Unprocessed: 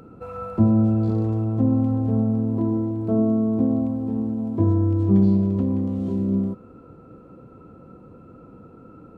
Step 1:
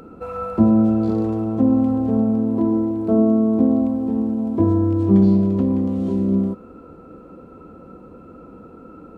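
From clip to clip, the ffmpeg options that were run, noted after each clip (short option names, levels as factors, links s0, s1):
-af "equalizer=f=120:t=o:w=0.51:g=-15,volume=1.88"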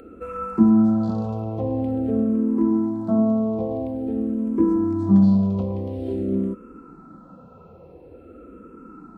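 -filter_complex "[0:a]asplit=2[s0][s1];[s1]afreqshift=-0.48[s2];[s0][s2]amix=inputs=2:normalize=1"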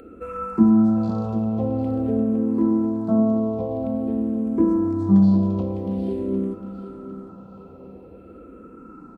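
-af "aecho=1:1:754|1508|2262|3016:0.251|0.0929|0.0344|0.0127"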